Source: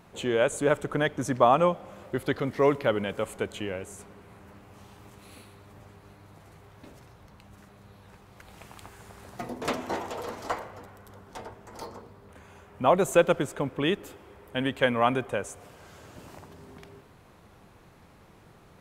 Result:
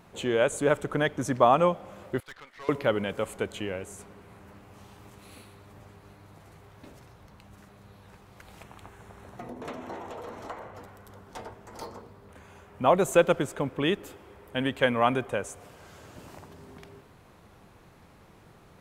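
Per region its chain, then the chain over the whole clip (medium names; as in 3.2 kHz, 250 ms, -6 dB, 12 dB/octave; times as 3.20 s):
2.20–2.69 s: high-pass 1.3 kHz + treble shelf 5 kHz -12 dB + valve stage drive 39 dB, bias 0.8
8.63–10.75 s: treble shelf 3.2 kHz -8.5 dB + band-stop 4.8 kHz, Q 8 + compression 2.5:1, threshold -37 dBFS
whole clip: none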